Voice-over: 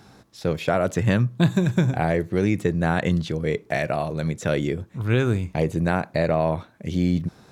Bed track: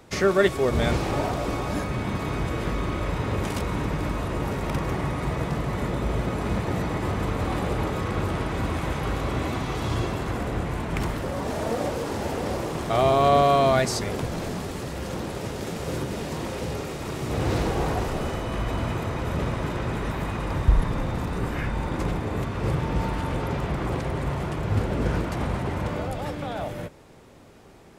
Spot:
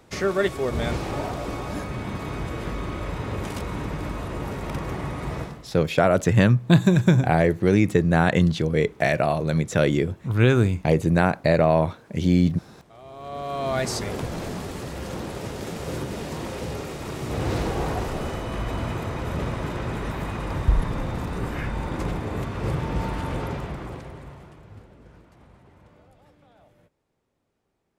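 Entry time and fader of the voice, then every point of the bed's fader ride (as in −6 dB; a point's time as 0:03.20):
5.30 s, +3.0 dB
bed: 0:05.40 −3 dB
0:05.76 −26 dB
0:13.00 −26 dB
0:13.88 −1 dB
0:23.43 −1 dB
0:25.01 −25.5 dB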